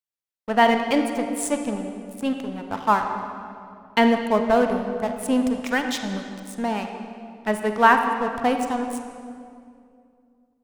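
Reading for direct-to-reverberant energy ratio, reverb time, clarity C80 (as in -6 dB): 5.0 dB, 2.4 s, 6.5 dB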